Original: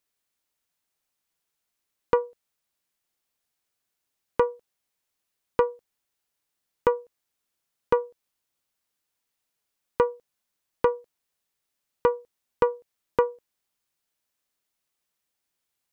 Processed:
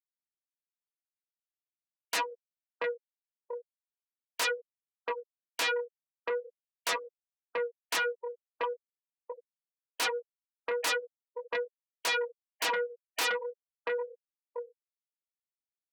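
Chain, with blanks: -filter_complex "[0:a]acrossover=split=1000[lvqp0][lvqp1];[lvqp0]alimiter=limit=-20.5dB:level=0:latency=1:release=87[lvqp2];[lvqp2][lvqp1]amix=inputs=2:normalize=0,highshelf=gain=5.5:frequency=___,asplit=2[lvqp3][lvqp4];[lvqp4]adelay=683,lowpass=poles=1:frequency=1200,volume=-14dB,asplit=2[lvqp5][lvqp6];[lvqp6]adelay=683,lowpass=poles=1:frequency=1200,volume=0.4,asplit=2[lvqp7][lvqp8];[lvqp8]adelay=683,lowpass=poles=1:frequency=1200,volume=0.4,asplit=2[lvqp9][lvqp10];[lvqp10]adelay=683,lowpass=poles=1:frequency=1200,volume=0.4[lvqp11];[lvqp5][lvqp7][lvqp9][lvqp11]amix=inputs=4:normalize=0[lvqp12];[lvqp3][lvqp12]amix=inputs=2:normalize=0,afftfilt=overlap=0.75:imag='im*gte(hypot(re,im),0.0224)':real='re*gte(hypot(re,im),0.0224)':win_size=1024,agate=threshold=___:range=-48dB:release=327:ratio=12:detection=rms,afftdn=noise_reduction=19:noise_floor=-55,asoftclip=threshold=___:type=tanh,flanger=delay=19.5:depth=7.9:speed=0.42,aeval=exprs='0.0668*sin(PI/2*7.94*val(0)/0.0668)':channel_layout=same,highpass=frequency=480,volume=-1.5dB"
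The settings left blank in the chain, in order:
3200, -51dB, -23.5dB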